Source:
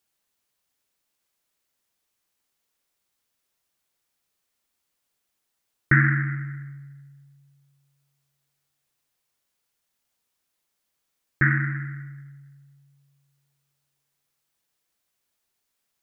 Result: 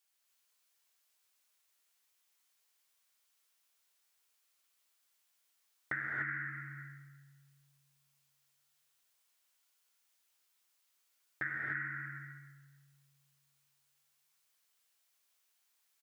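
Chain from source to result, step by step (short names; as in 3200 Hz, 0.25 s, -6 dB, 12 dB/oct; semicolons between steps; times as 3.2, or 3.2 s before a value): compressor 6:1, threshold -30 dBFS, peak gain reduction 16 dB; HPF 1200 Hz 6 dB/oct; doubler 13 ms -11 dB; non-linear reverb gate 0.32 s rising, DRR -1 dB; gain -2 dB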